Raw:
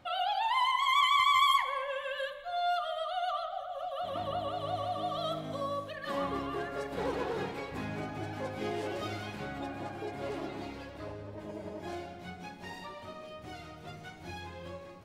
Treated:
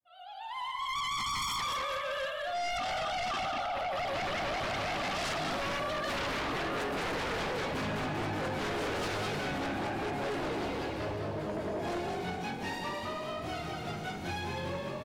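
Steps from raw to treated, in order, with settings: fade-in on the opening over 4.07 s; frequency-shifting echo 206 ms, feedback 46%, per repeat +47 Hz, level -4 dB; sine folder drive 12 dB, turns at -22 dBFS; trim -8.5 dB

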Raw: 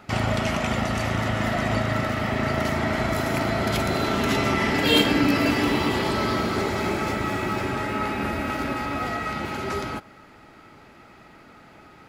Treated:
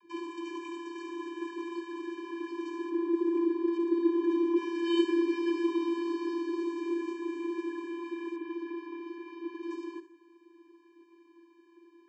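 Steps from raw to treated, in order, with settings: 2.89–4.56 s: tilt EQ -4 dB/octave; vocoder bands 32, square 339 Hz; 8.36–9.63 s: distance through air 140 m; on a send: flutter echo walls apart 11.9 m, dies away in 0.38 s; on the sum: trim -7.5 dB

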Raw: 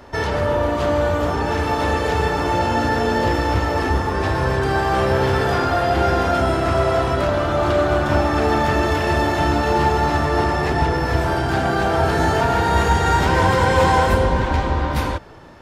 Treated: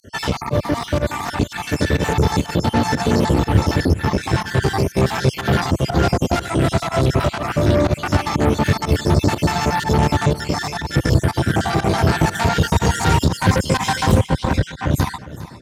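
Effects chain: random holes in the spectrogram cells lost 58%; in parallel at +0.5 dB: peak limiter -15 dBFS, peak gain reduction 9 dB; on the sum: volume shaper 122 bpm, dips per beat 1, -21 dB, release 79 ms; Chebyshev shaper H 6 -16 dB, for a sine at -3 dBFS; high-pass 120 Hz 12 dB/octave; tone controls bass +14 dB, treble +9 dB; on a send: delay 405 ms -16.5 dB; on the sum: trim -5 dB

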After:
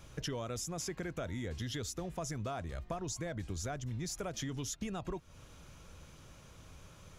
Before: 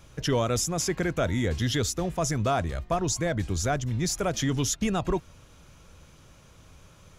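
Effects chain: compression 6:1, threshold -35 dBFS, peak gain reduction 13.5 dB; trim -2 dB

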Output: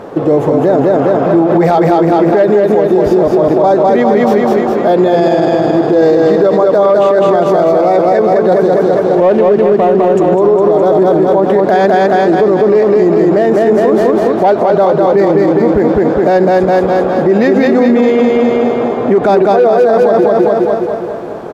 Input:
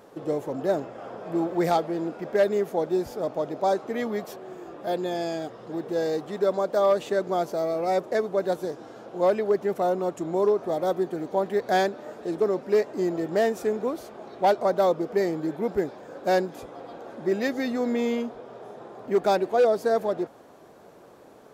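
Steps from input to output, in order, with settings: 8.99–10.12 s: median filter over 25 samples; low-pass 1.5 kHz 6 dB/octave; feedback delay 205 ms, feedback 58%, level -3 dB; loudness maximiser +24.5 dB; trim -1 dB

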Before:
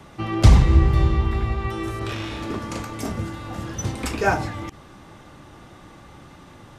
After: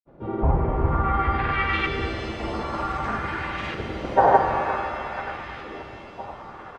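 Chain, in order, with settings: low-pass that closes with the level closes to 1.3 kHz, closed at -13 dBFS; tilt shelf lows -9.5 dB, about 940 Hz; on a send: bucket-brigade echo 491 ms, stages 4096, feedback 78%, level -14 dB; on the sum: LFO low-pass saw up 0.54 Hz 400–2400 Hz; harmony voices -7 st -6 dB, +3 st -3 dB; granulator 100 ms, grains 20 per s, pitch spread up and down by 0 st; pitch-shifted reverb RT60 3.1 s, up +7 st, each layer -8 dB, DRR 5 dB

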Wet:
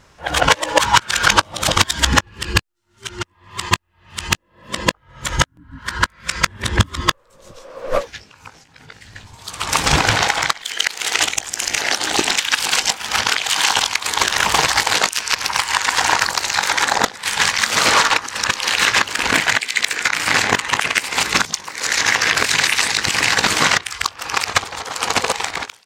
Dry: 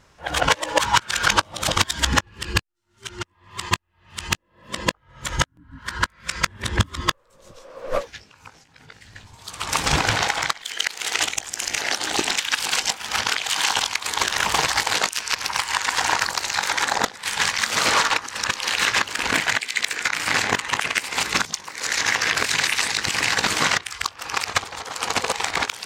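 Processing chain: fade out at the end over 0.60 s; trim +5 dB

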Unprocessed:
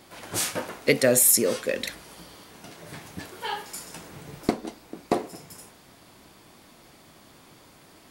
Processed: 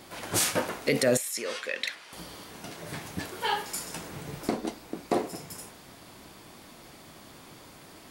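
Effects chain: peak limiter -17 dBFS, peak gain reduction 10 dB; 1.17–2.13 s: band-pass filter 2.3 kHz, Q 0.76; trim +3 dB

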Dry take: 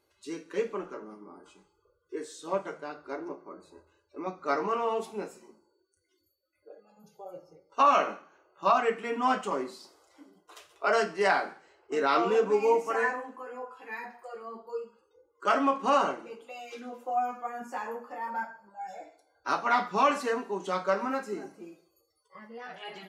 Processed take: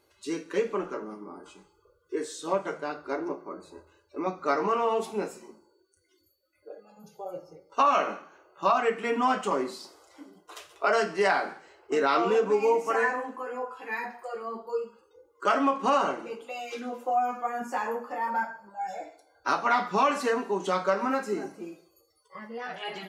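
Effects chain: compression 2:1, threshold -30 dBFS, peak gain reduction 7.5 dB; trim +6 dB

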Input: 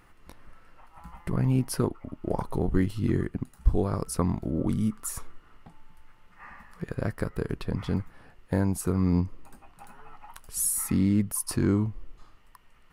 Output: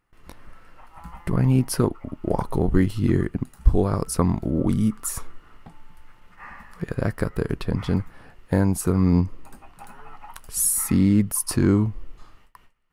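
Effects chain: gate with hold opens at -45 dBFS; trim +5.5 dB

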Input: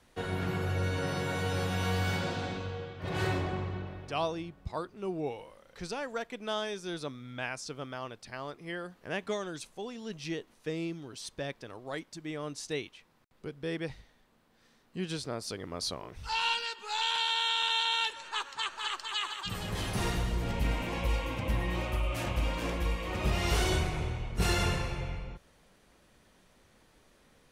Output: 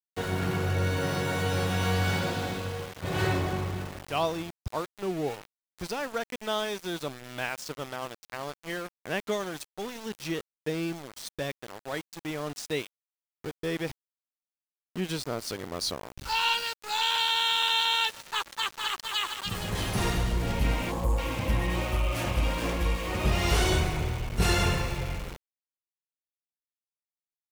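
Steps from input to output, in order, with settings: time-frequency box 20.92–21.18 s, 1.3–6.5 kHz -30 dB; small samples zeroed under -40.5 dBFS; trim +4 dB

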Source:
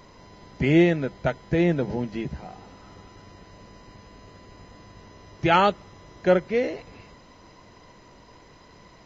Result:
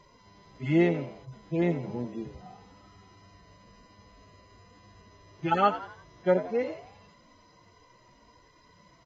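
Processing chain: harmonic-percussive separation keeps harmonic; dynamic bell 1.1 kHz, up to +7 dB, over -41 dBFS, Q 1.4; frequency-shifting echo 86 ms, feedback 44%, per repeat +82 Hz, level -13.5 dB; trim -5.5 dB

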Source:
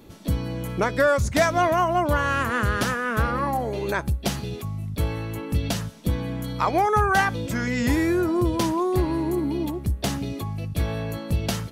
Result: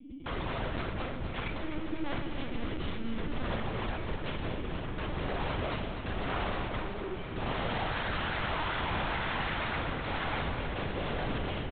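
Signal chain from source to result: de-hum 230.1 Hz, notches 37; dynamic bell 140 Hz, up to -4 dB, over -38 dBFS, Q 1.3; compression 12:1, threshold -26 dBFS, peak gain reduction 11.5 dB; frequency shift -21 Hz; cascade formant filter i; frequency-shifting echo 103 ms, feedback 31%, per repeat -110 Hz, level -15.5 dB; integer overflow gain 37 dB; reverberation RT60 0.70 s, pre-delay 22 ms, DRR -1 dB; LPC vocoder at 8 kHz pitch kept; modulated delay 249 ms, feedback 74%, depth 53 cents, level -9 dB; trim +5 dB

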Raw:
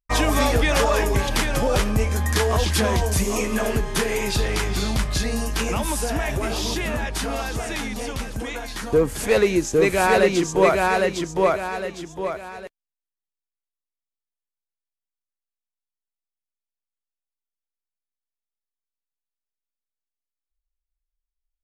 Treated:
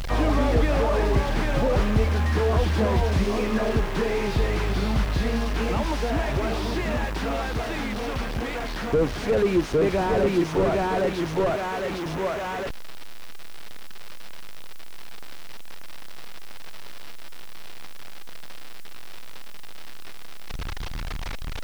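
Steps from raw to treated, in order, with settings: one-bit delta coder 32 kbps, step -22.5 dBFS; added noise white -54 dBFS; slew-rate limiter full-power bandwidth 59 Hz

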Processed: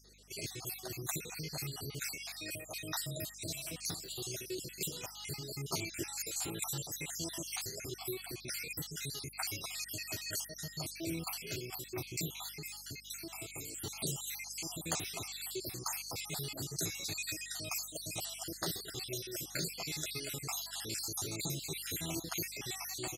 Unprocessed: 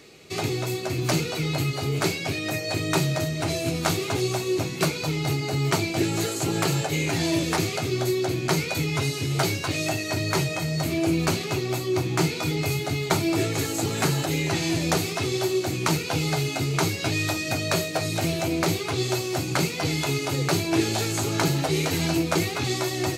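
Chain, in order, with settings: random holes in the spectrogram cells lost 60%; pre-emphasis filter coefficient 0.8; 12.49–13.82 s: compression 4:1, threshold -40 dBFS, peak gain reduction 7 dB; hum 50 Hz, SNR 24 dB; 3.03–3.66 s: echo throw 480 ms, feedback 20%, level -14 dB; trim -2 dB

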